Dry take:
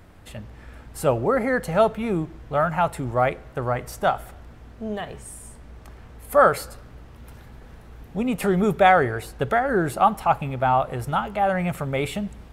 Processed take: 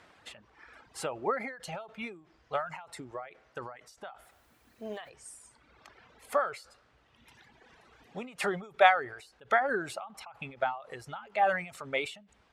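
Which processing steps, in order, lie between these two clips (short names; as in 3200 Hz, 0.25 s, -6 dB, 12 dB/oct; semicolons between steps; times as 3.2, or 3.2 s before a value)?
HPF 1100 Hz 6 dB/oct; reverb removal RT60 1.6 s; LPF 6100 Hz 12 dB/oct; 4.23–5.08 added noise white -74 dBFS; ending taper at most 120 dB/s; gain +1.5 dB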